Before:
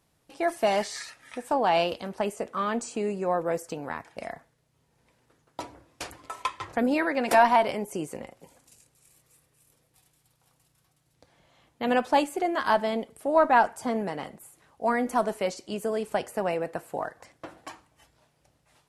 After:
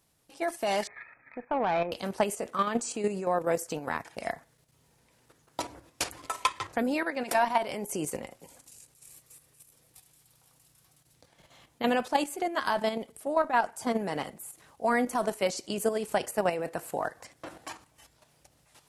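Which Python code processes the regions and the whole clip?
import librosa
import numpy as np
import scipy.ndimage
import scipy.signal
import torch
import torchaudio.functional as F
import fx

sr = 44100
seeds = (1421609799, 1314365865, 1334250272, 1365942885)

y = fx.chain(x, sr, fx.brickwall_lowpass(high_hz=2600.0),
    fx.tube_stage(drive_db=18.0, bias=0.4), at=(0.87, 1.92))
y = fx.level_steps(y, sr, step_db=9)
y = fx.high_shelf(y, sr, hz=4000.0, db=7.5)
y = fx.rider(y, sr, range_db=5, speed_s=0.5)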